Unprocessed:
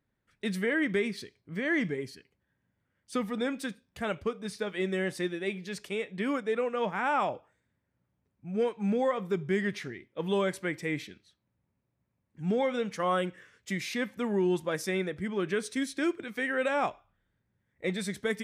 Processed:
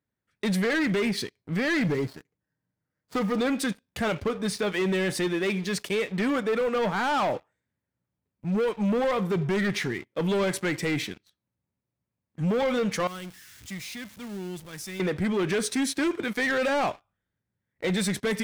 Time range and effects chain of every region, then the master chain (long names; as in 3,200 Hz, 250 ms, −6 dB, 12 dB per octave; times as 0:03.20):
0:01.85–0:03.40: running median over 15 samples + comb filter 6.5 ms, depth 42%
0:13.07–0:15.00: converter with a step at zero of −33.5 dBFS + guitar amp tone stack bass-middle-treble 6-0-2
whole clip: high-pass filter 54 Hz 12 dB per octave; leveller curve on the samples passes 3; brickwall limiter −21 dBFS